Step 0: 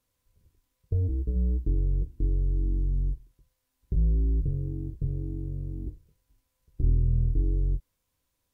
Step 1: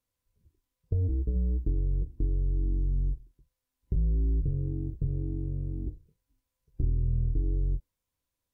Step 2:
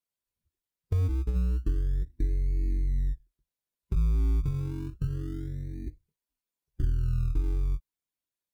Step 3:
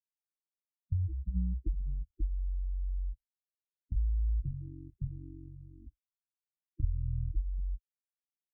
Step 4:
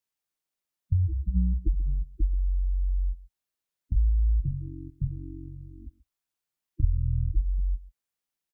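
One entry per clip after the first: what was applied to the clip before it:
noise reduction from a noise print of the clip's start 9 dB; downward compressor, threshold −24 dBFS, peak gain reduction 6.5 dB; level +1 dB
spectral dynamics exaggerated over time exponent 1.5; in parallel at −10 dB: sample-and-hold swept by an LFO 29×, swing 60% 0.29 Hz
power curve on the samples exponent 2; gate on every frequency bin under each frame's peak −10 dB strong
single-tap delay 134 ms −19.5 dB; level +7.5 dB

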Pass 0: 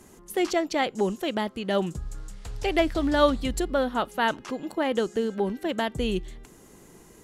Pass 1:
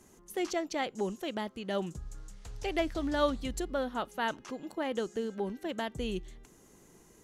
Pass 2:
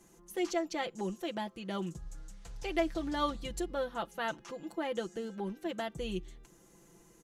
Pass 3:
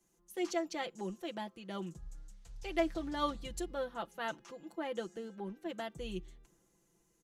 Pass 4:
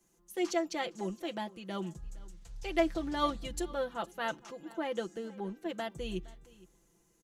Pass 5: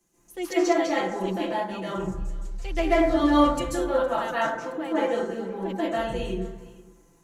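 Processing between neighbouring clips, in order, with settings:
parametric band 6,200 Hz +5 dB 0.29 octaves; level −8 dB
comb filter 5.9 ms, depth 67%; level −3.5 dB
multiband upward and downward expander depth 40%; level −3.5 dB
single-tap delay 464 ms −21.5 dB; level +3.5 dB
convolution reverb RT60 0.85 s, pre-delay 128 ms, DRR −9.5 dB

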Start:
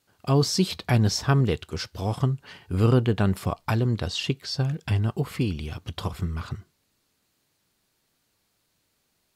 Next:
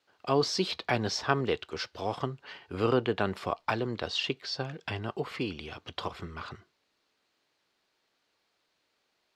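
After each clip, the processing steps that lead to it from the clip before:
three-way crossover with the lows and the highs turned down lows −16 dB, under 310 Hz, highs −20 dB, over 5,400 Hz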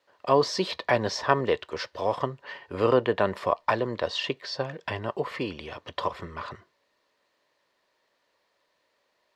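hollow resonant body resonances 570/990/1,800 Hz, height 11 dB, ringing for 20 ms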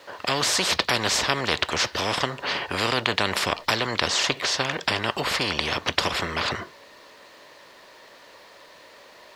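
every bin compressed towards the loudest bin 4 to 1
level +4 dB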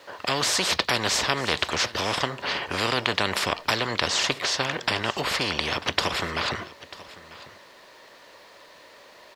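single-tap delay 943 ms −18.5 dB
level −1 dB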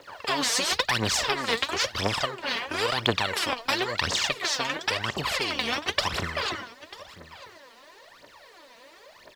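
phase shifter 0.97 Hz, delay 4.5 ms, feedback 75%
level −5 dB

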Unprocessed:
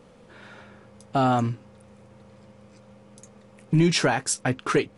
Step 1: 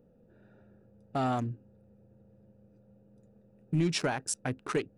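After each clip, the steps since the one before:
adaptive Wiener filter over 41 samples
high-shelf EQ 9,200 Hz +6 dB
level −8 dB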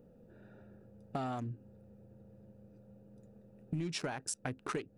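downward compressor 5 to 1, threshold −38 dBFS, peak gain reduction 13 dB
level +2.5 dB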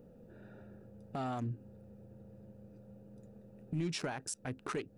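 brickwall limiter −31.5 dBFS, peak gain reduction 9 dB
level +3 dB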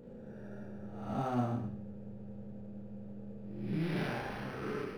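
spectrum smeared in time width 321 ms
four-comb reverb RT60 0.3 s, combs from 29 ms, DRR −2.5 dB
linearly interpolated sample-rate reduction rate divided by 6×
level +4.5 dB

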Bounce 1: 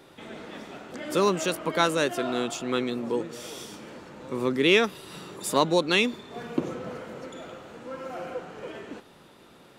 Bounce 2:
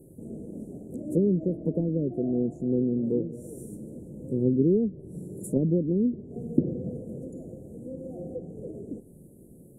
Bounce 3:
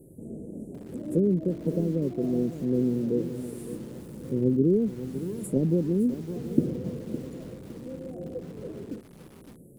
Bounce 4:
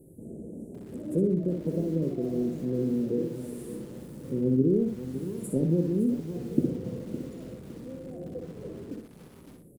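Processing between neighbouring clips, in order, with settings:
treble cut that deepens with the level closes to 370 Hz, closed at −20 dBFS; inverse Chebyshev band-stop filter 1,100–4,900 Hz, stop band 50 dB; bass and treble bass +10 dB, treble +7 dB
feedback echo at a low word length 561 ms, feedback 35%, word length 7 bits, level −11.5 dB
repeating echo 62 ms, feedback 24%, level −5.5 dB; level −2.5 dB

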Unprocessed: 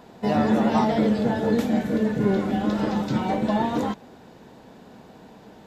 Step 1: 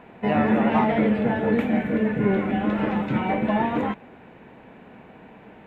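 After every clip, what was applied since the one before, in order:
high shelf with overshoot 3,500 Hz −13.5 dB, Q 3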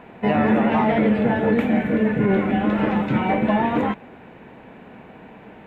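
boost into a limiter +12 dB
level −8.5 dB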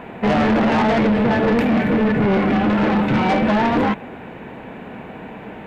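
soft clipping −22 dBFS, distortion −9 dB
level +8.5 dB

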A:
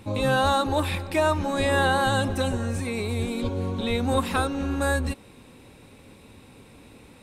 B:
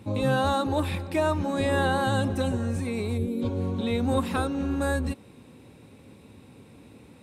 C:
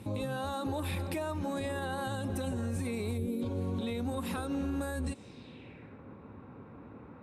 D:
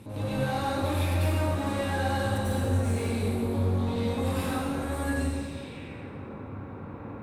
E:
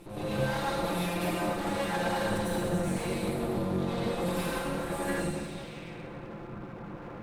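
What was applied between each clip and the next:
gain on a spectral selection 0:03.17–0:03.42, 580–10,000 Hz −11 dB; high-pass filter 89 Hz; low-shelf EQ 480 Hz +8 dB; level −5.5 dB
downward compressor, threshold −28 dBFS, peak gain reduction 8.5 dB; brickwall limiter −26.5 dBFS, peak gain reduction 6.5 dB; low-pass filter sweep 12,000 Hz → 1,300 Hz, 0:04.94–0:06.02
soft clipping −35 dBFS, distortion −12 dB; dense smooth reverb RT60 1.8 s, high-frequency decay 0.85×, pre-delay 80 ms, DRR −10 dB
lower of the sound and its delayed copy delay 5.8 ms

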